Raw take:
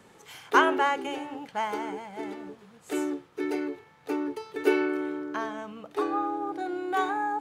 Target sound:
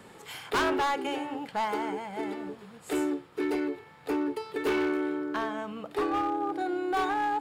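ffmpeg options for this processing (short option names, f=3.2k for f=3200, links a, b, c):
-filter_complex "[0:a]bandreject=f=6.1k:w=6,asplit=2[a][b];[b]acompressor=threshold=-40dB:ratio=6,volume=-3dB[c];[a][c]amix=inputs=2:normalize=0,asoftclip=type=hard:threshold=-23.5dB"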